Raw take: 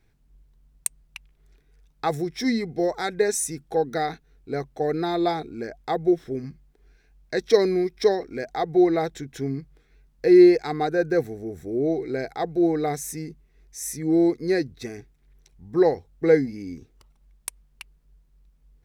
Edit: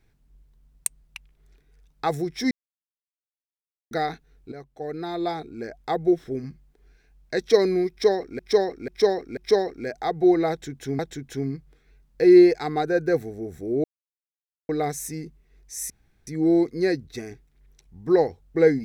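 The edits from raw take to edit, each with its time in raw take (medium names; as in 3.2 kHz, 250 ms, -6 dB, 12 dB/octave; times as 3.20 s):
2.51–3.91 s: mute
4.52–5.92 s: fade in, from -13.5 dB
7.90–8.39 s: loop, 4 plays
9.03–9.52 s: loop, 2 plays
11.88–12.73 s: mute
13.94 s: insert room tone 0.37 s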